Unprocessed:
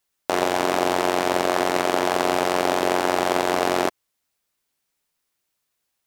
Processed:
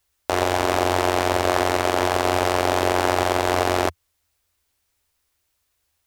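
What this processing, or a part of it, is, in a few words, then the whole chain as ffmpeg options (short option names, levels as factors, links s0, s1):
car stereo with a boomy subwoofer: -af "lowshelf=f=110:t=q:w=3:g=9.5,alimiter=limit=0.376:level=0:latency=1:release=180,volume=1.68"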